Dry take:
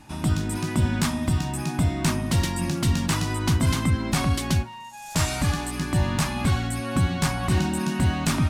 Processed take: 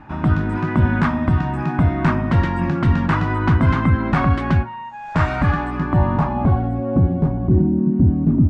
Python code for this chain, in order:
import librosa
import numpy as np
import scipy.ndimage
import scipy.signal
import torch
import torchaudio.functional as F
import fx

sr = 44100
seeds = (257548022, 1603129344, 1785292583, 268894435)

y = fx.filter_sweep_lowpass(x, sr, from_hz=1500.0, to_hz=300.0, start_s=5.56, end_s=7.78, q=1.6)
y = F.gain(torch.from_numpy(y), 6.0).numpy()